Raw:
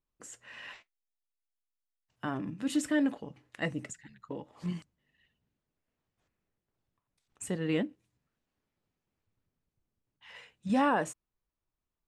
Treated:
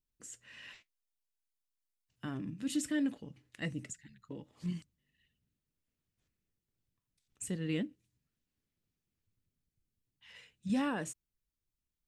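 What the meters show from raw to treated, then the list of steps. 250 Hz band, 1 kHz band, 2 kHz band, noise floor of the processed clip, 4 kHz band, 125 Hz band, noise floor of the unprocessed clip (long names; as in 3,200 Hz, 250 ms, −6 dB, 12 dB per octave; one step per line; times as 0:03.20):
−4.0 dB, −12.0 dB, −6.5 dB, below −85 dBFS, −3.0 dB, −1.5 dB, below −85 dBFS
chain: parametric band 840 Hz −13 dB 2.2 octaves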